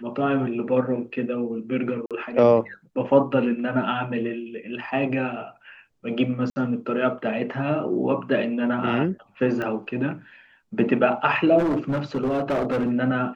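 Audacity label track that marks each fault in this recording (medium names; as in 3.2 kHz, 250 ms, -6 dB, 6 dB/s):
2.060000	2.110000	dropout 47 ms
6.500000	6.560000	dropout 60 ms
9.620000	9.620000	pop -18 dBFS
11.580000	12.920000	clipped -19.5 dBFS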